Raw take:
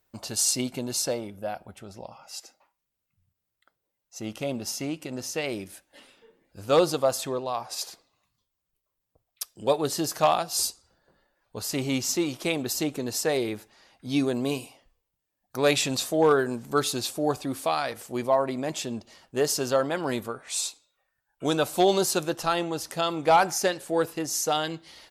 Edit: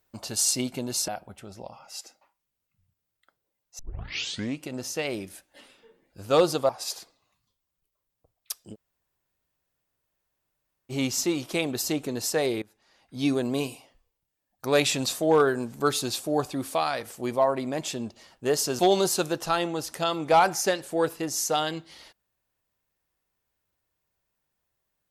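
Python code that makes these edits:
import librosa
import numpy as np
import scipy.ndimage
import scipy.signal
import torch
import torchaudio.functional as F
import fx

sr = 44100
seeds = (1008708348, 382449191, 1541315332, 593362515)

y = fx.edit(x, sr, fx.cut(start_s=1.08, length_s=0.39),
    fx.tape_start(start_s=4.18, length_s=0.83),
    fx.cut(start_s=7.08, length_s=0.52),
    fx.room_tone_fill(start_s=9.65, length_s=2.17, crossfade_s=0.04),
    fx.fade_in_from(start_s=13.53, length_s=0.66, floor_db=-21.0),
    fx.cut(start_s=19.7, length_s=2.06), tone=tone)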